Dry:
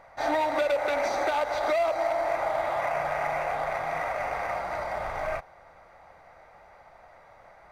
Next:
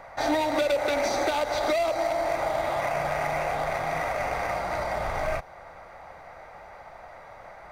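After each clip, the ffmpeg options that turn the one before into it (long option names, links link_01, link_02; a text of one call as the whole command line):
ffmpeg -i in.wav -filter_complex "[0:a]acrossover=split=420|3000[link_01][link_02][link_03];[link_02]acompressor=threshold=-39dB:ratio=2.5[link_04];[link_01][link_04][link_03]amix=inputs=3:normalize=0,volume=7.5dB" out.wav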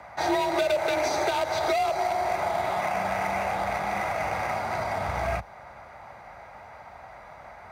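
ffmpeg -i in.wav -af "afreqshift=43" out.wav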